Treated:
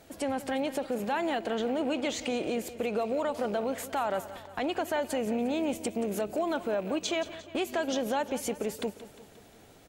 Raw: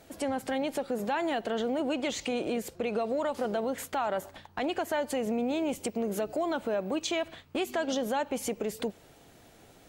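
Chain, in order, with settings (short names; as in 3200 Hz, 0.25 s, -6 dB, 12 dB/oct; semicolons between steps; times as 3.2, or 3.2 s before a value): rattling part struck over -41 dBFS, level -42 dBFS; feedback echo 0.177 s, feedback 57%, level -15 dB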